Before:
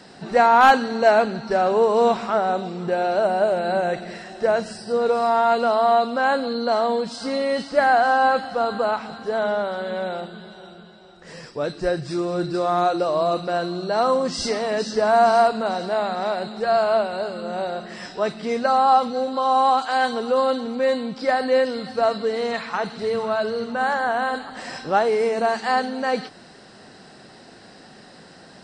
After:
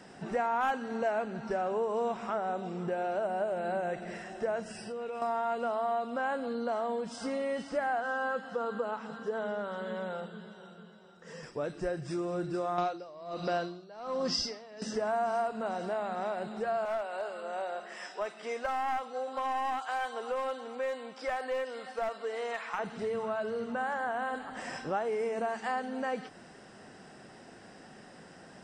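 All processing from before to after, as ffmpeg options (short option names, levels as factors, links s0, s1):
-filter_complex "[0:a]asettb=1/sr,asplit=3[s0][s1][s2];[s0]atrim=end=4.714[s3];[s1]atrim=start=4.71:end=5.22,asetpts=PTS-STARTPTS,afade=t=in:d=0.004:c=qsin,afade=t=out:st=0.506:d=0.004:c=qsin,equalizer=f=2600:w=2.4:g=11,acompressor=threshold=0.0251:ratio=4:attack=3.2:release=140:knee=1:detection=peak[s4];[s2]atrim=start=5.216[s5];[s3][s4]acrossfade=d=0.004:c1=hsin:c2=qsin[s6];[s6][s5]acrossfade=d=0.004:c1=qsin:c2=hsin,asettb=1/sr,asplit=3[s7][s8][s9];[s7]atrim=end=8.004[s10];[s8]atrim=start=8:end=11.43,asetpts=PTS-STARTPTS,afade=t=in:d=0.004:c=qsin,afade=t=out:st=3.426:d=0.004:c=qsin,highpass=130,equalizer=f=320:t=q:w=4:g=-10,equalizer=f=470:t=q:w=4:g=4,equalizer=f=710:t=q:w=4:g=-9,equalizer=f=2300:t=q:w=4:g=-8,lowpass=f=8000:w=0.5412,lowpass=f=8000:w=1.3066,aecho=1:1:4.4:0.3,atrim=end_sample=151263[s11];[s9]atrim=start=11.426[s12];[s10][s11]acrossfade=d=0.004:c1=hsin:c2=qsin[s13];[s13][s12]acrossfade=d=0.004:c1=qsin:c2=hsin,asettb=1/sr,asplit=3[s14][s15][s16];[s14]atrim=end=12.784[s17];[s15]atrim=start=12.78:end=14.82,asetpts=PTS-STARTPTS,afade=t=in:d=0.004:c=qsin,afade=t=out:st=2.036:d=0.004:c=qsin,acontrast=81,lowpass=f=4900:t=q:w=4.8,aeval=exprs='val(0)*pow(10,-28*(0.5-0.5*cos(2*PI*1.3*n/s))/20)':c=same[s18];[s16]atrim=start=14.816[s19];[s17][s18]acrossfade=d=0.004:c1=hsin:c2=qsin[s20];[s20][s19]acrossfade=d=0.004:c1=qsin:c2=hsin,asettb=1/sr,asplit=3[s21][s22][s23];[s21]atrim=end=16.854[s24];[s22]atrim=start=16.85:end=22.79,asetpts=PTS-STARTPTS,afade=t=in:d=0.004:c=qsin,afade=t=out:st=5.936:d=0.004:c=qsin,highpass=540,aeval=exprs='clip(val(0),-1,0.1)':c=same[s25];[s23]atrim=start=22.786[s26];[s24][s25]acrossfade=d=0.004:c1=hsin:c2=qsin[s27];[s27][s26]acrossfade=d=0.004:c1=qsin:c2=hsin,equalizer=f=4200:t=o:w=0.29:g=-15,acompressor=threshold=0.0447:ratio=2.5,volume=0.531"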